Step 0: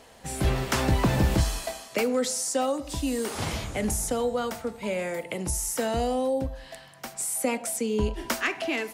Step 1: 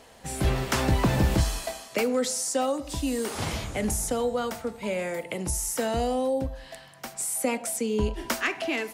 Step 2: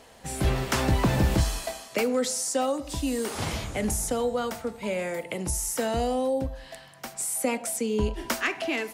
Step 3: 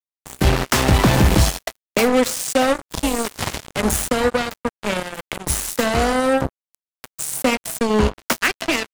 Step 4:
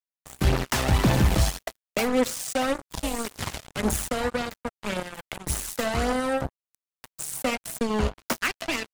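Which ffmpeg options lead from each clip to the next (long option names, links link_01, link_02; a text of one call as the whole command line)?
ffmpeg -i in.wav -af anull out.wav
ffmpeg -i in.wav -af "asoftclip=type=hard:threshold=-13.5dB" out.wav
ffmpeg -i in.wav -filter_complex "[0:a]acrossover=split=140|920[link_01][link_02][link_03];[link_01]acompressor=mode=upward:threshold=-34dB:ratio=2.5[link_04];[link_04][link_02][link_03]amix=inputs=3:normalize=0,acrusher=bits=3:mix=0:aa=0.5,volume=8dB" out.wav
ffmpeg -i in.wav -af "aphaser=in_gain=1:out_gain=1:delay=1.7:decay=0.32:speed=1.8:type=triangular,volume=-8dB" out.wav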